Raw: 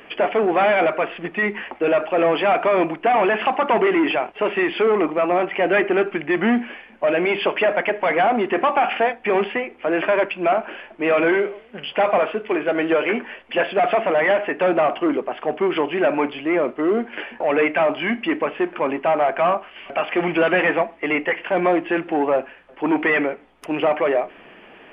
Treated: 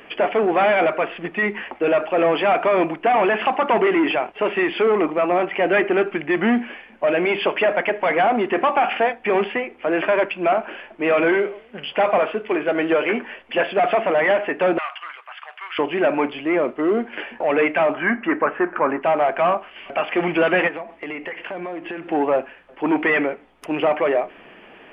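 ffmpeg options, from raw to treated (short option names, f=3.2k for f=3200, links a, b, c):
-filter_complex "[0:a]asettb=1/sr,asplit=3[a][b][c];[a]atrim=end=14.784[d];[b]atrim=start=14.78:end=15.79,asetpts=PTS-STARTPTS,afade=t=in:d=0.004:c=qsin,afade=t=out:st=1.006:d=0.004:c=qsin,highpass=f=1.2k:w=0.5412,highpass=f=1.2k:w=1.3066[e];[c]atrim=start=15.786[f];[d][e]acrossfade=d=0.004:c1=hsin:c2=qsin[g];[g][f]acrossfade=d=0.004:c1=qsin:c2=hsin,asettb=1/sr,asplit=3[h][i][j];[h]atrim=end=17.944[k];[i]atrim=start=17.94:end=19.02,asetpts=PTS-STARTPTS,afade=t=in:d=0.004:c=qsin,afade=t=out:st=1.076:d=0.004:c=qsin,lowpass=f=1.5k:t=q:w=2.9[l];[j]atrim=start=19.016[m];[k][l]acrossfade=d=0.004:c1=hsin:c2=qsin[n];[n][m]acrossfade=d=0.004:c1=qsin:c2=hsin,asplit=3[o][p][q];[o]afade=t=out:st=20.67:d=0.02[r];[p]acompressor=threshold=-27dB:ratio=6:attack=3.2:release=140:knee=1:detection=peak,afade=t=in:st=20.67:d=0.02,afade=t=out:st=22.09:d=0.02[s];[q]afade=t=in:st=22.09:d=0.02[t];[r][s][t]amix=inputs=3:normalize=0"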